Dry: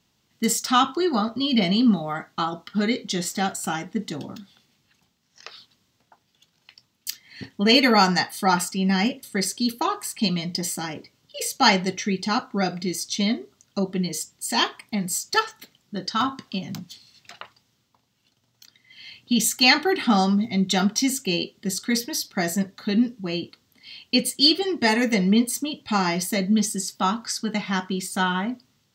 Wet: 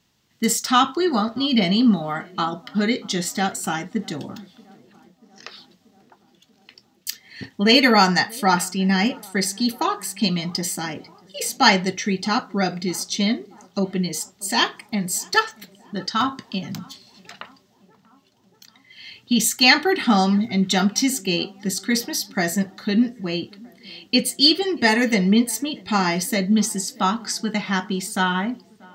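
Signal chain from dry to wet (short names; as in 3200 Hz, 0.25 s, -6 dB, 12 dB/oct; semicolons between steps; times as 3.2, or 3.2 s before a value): bell 1800 Hz +3.5 dB 0.22 oct; tape echo 0.635 s, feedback 75%, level -24 dB, low-pass 1400 Hz; gain +2 dB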